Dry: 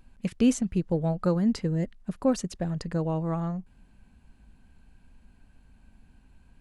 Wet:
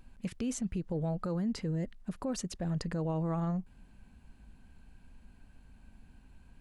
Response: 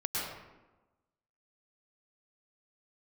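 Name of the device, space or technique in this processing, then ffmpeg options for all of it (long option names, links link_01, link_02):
stacked limiters: -af "alimiter=limit=-16dB:level=0:latency=1:release=497,alimiter=limit=-21dB:level=0:latency=1:release=106,alimiter=level_in=2.5dB:limit=-24dB:level=0:latency=1:release=40,volume=-2.5dB"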